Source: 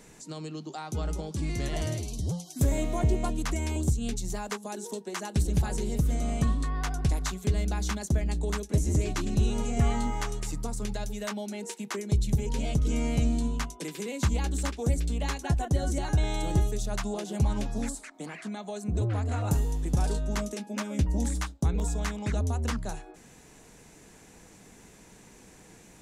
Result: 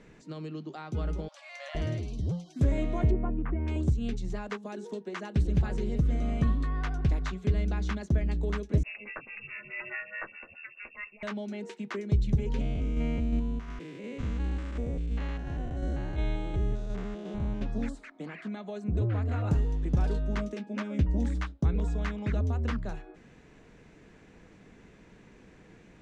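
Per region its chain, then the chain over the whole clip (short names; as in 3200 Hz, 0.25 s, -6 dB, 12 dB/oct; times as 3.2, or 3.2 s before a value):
1.28–1.75 transient shaper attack +2 dB, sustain +6 dB + brick-wall FIR high-pass 530 Hz
3.11–3.68 Gaussian blur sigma 4.9 samples + notch 600 Hz, Q 9.5
8.83–11.23 resonant low shelf 430 Hz -10.5 dB, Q 1.5 + inverted band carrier 2700 Hz + photocell phaser 4.7 Hz
12.61–17.62 stepped spectrum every 0.2 s + bell 4300 Hz -2.5 dB 0.43 oct + tremolo saw down 2.8 Hz, depth 35%
whole clip: LPF 2700 Hz 12 dB/oct; bell 840 Hz -6 dB 0.66 oct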